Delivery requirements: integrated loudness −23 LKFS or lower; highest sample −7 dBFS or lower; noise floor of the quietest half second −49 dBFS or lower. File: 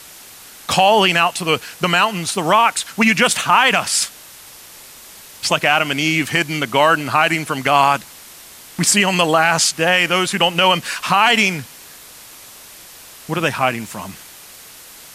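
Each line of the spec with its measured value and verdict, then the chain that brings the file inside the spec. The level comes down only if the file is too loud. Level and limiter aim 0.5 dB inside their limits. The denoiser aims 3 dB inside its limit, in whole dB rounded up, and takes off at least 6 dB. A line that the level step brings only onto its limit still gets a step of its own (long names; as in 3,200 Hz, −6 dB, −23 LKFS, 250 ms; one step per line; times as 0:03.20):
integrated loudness −15.5 LKFS: out of spec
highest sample −2.5 dBFS: out of spec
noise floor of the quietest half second −40 dBFS: out of spec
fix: broadband denoise 6 dB, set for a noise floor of −40 dBFS
level −8 dB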